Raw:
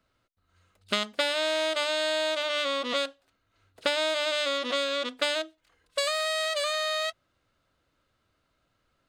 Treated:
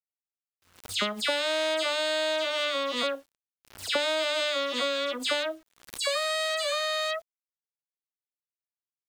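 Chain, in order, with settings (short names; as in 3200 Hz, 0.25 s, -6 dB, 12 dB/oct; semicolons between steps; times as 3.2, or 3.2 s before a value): dispersion lows, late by 0.1 s, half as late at 2500 Hz; requantised 10-bit, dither none; backwards sustainer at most 140 dB/s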